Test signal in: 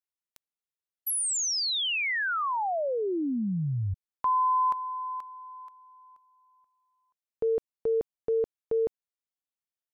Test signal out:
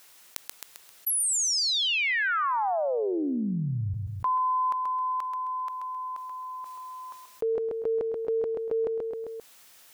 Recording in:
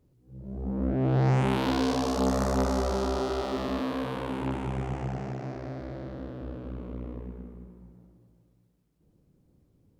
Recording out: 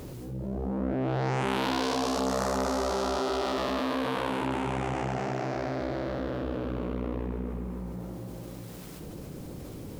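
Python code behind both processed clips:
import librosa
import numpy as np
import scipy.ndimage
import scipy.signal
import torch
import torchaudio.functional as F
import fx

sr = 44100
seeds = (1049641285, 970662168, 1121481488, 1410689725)

p1 = fx.low_shelf(x, sr, hz=320.0, db=-10.5)
p2 = p1 + fx.echo_feedback(p1, sr, ms=132, feedback_pct=34, wet_db=-11.0, dry=0)
y = fx.env_flatten(p2, sr, amount_pct=70)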